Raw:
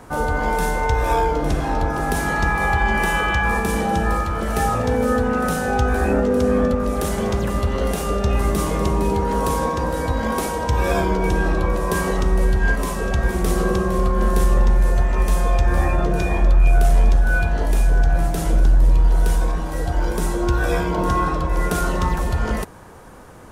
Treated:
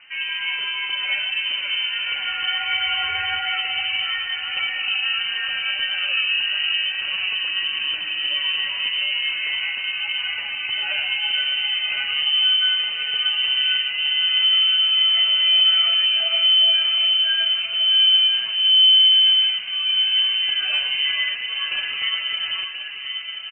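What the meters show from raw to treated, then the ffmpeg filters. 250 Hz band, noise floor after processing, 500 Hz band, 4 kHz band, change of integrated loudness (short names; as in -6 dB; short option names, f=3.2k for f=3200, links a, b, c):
under -35 dB, -29 dBFS, under -25 dB, +24.0 dB, +2.5 dB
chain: -filter_complex "[0:a]asplit=2[a][b];[b]adelay=1029,lowpass=f=2.2k:p=1,volume=-7dB,asplit=2[c][d];[d]adelay=1029,lowpass=f=2.2k:p=1,volume=0.53,asplit=2[e][f];[f]adelay=1029,lowpass=f=2.2k:p=1,volume=0.53,asplit=2[g][h];[h]adelay=1029,lowpass=f=2.2k:p=1,volume=0.53,asplit=2[i][j];[j]adelay=1029,lowpass=f=2.2k:p=1,volume=0.53,asplit=2[k][l];[l]adelay=1029,lowpass=f=2.2k:p=1,volume=0.53[m];[c][e][g][i][k][m]amix=inputs=6:normalize=0[n];[a][n]amix=inputs=2:normalize=0,flanger=delay=3.6:depth=1.7:regen=29:speed=1.6:shape=triangular,lowpass=f=2.6k:t=q:w=0.5098,lowpass=f=2.6k:t=q:w=0.6013,lowpass=f=2.6k:t=q:w=0.9,lowpass=f=2.6k:t=q:w=2.563,afreqshift=-3100,equalizer=f=63:w=0.36:g=6.5,asplit=2[o][p];[p]aecho=0:1:126:0.237[q];[o][q]amix=inputs=2:normalize=0,volume=-2dB"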